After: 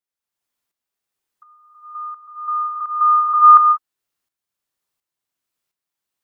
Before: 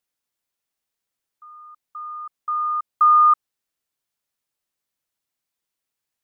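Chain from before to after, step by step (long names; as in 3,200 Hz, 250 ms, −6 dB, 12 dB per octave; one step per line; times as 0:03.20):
parametric band 1,100 Hz +2.5 dB
reverb whose tail is shaped and stops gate 450 ms rising, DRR −3 dB
shaped tremolo saw up 1.4 Hz, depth 65%
level −1 dB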